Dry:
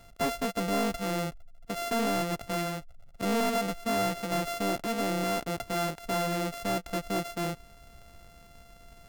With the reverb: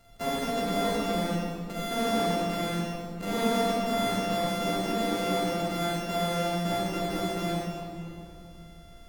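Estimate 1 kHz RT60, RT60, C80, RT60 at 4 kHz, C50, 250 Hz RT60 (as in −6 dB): 2.3 s, 2.5 s, −2.0 dB, 1.7 s, −5.0 dB, 3.1 s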